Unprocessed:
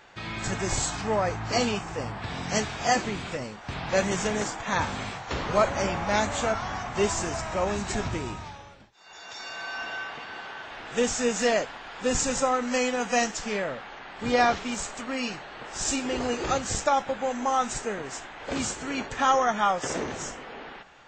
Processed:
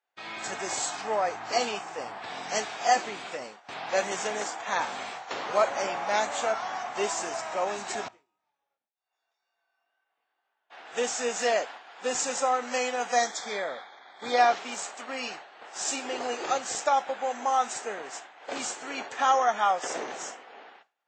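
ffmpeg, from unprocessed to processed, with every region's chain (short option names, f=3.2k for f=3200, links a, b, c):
-filter_complex "[0:a]asettb=1/sr,asplit=3[a][b][c];[a]atrim=end=8.084[d];[b]atrim=start=8.08:end=10.7,asetpts=PTS-STARTPTS,afade=t=in:d=0.004:c=qsin,afade=t=out:st=2.616:d=0.004:c=qsin,flanger=delay=18.5:depth=4.8:speed=2,acompressor=threshold=-47dB:ratio=10:attack=3.2:release=140:knee=1:detection=peak,highshelf=f=5.3k:g=-7[e];[c]atrim=start=10.696[f];[d][e]acrossfade=d=0.004:c1=hsin:c2=qsin[g];[g][f]acrossfade=d=0.004:c1=qsin:c2=hsin,asettb=1/sr,asplit=3[h][i][j];[h]atrim=end=13.124[k];[i]atrim=start=13.12:end=14.38,asetpts=PTS-STARTPTS,afade=t=in:d=0.004:c=qsin,afade=t=out:st=1.256:d=0.004:c=qsin,asuperstop=centerf=2800:order=8:qfactor=3.2,equalizer=f=3.4k:t=o:w=0.43:g=9[l];[j]atrim=start=14.376[m];[k][l]acrossfade=d=0.004:c1=hsin:c2=qsin[n];[n][m]acrossfade=d=0.004:c1=qsin:c2=hsin,agate=range=-33dB:threshold=-35dB:ratio=3:detection=peak,highpass=410,equalizer=f=740:t=o:w=0.31:g=5,volume=-2dB"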